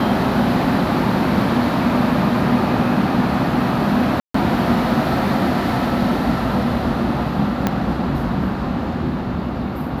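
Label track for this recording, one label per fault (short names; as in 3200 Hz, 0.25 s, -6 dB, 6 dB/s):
4.200000	4.340000	gap 0.144 s
7.670000	7.670000	pop -4 dBFS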